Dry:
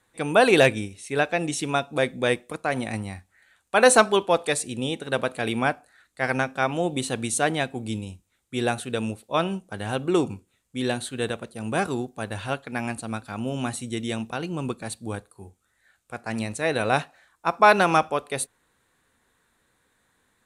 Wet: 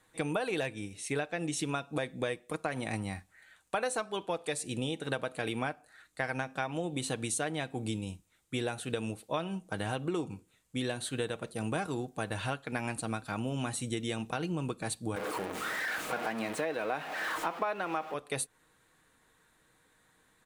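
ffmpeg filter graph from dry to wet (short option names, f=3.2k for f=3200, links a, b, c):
-filter_complex "[0:a]asettb=1/sr,asplit=3[a][b][c];[a]atrim=end=15.164[d];[b]atrim=start=15.16:end=18.14,asetpts=PTS-STARTPTS,afade=t=in:d=0.004:c=qsin,afade=t=out:st=2.976:d=0.004:c=qsin,aeval=exprs='val(0)+0.5*0.0531*sgn(val(0))':c=same,acrossover=split=210 3100:gain=0.0708 1 0.224[e][f][g];[e][f][g]amix=inputs=3:normalize=0[h];[c]atrim=start=18.136[i];[d][h]acrossfade=d=0.004:c1=hsin:c2=qsin[j];[j][i]acrossfade=d=0.004:c1=qsin:c2=hsin,aecho=1:1:6.4:0.33,acompressor=threshold=-30dB:ratio=10"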